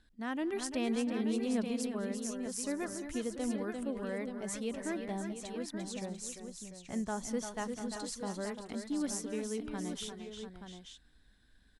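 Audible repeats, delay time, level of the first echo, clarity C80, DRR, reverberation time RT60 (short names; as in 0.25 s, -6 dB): 4, 0.207 s, -19.5 dB, none, none, none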